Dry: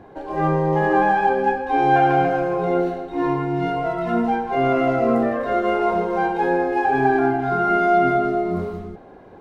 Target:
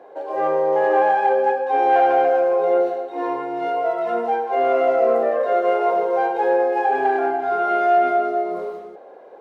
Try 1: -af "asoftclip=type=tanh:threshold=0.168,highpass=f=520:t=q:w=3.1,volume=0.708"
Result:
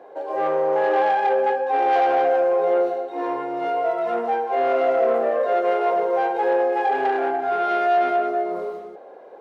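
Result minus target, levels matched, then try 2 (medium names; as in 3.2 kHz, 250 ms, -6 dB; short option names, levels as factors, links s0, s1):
saturation: distortion +10 dB
-af "asoftclip=type=tanh:threshold=0.376,highpass=f=520:t=q:w=3.1,volume=0.708"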